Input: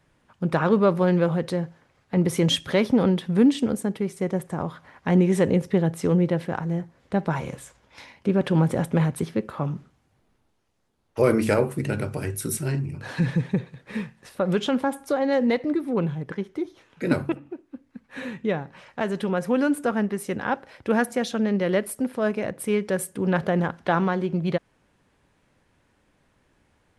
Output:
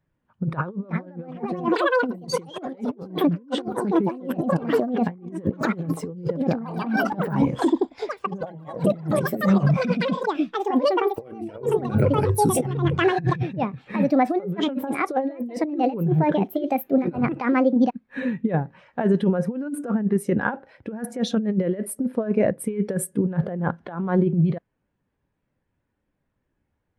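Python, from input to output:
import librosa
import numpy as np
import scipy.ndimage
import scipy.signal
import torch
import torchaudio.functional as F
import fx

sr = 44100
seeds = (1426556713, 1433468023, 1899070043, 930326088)

y = fx.echo_pitch(x, sr, ms=523, semitones=6, count=3, db_per_echo=-3.0)
y = fx.over_compress(y, sr, threshold_db=-26.0, ratio=-0.5)
y = fx.spectral_expand(y, sr, expansion=1.5)
y = F.gain(torch.from_numpy(y), 1.0).numpy()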